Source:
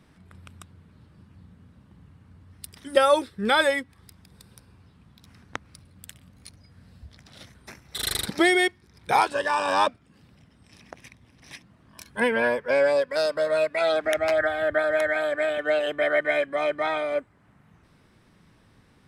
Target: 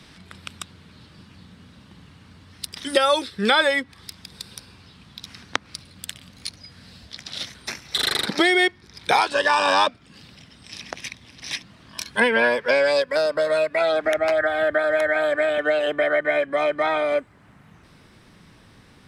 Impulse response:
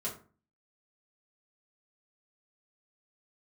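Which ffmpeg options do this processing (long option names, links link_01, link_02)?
-filter_complex "[0:a]acrossover=split=160|1900[link_01][link_02][link_03];[link_01]acompressor=threshold=-59dB:ratio=4[link_04];[link_02]acompressor=threshold=-26dB:ratio=4[link_05];[link_03]acompressor=threshold=-44dB:ratio=4[link_06];[link_04][link_05][link_06]amix=inputs=3:normalize=0,asetnsamples=nb_out_samples=441:pad=0,asendcmd='13.02 equalizer g 4',equalizer=frequency=4200:width_type=o:width=2:gain=13,volume=7dB"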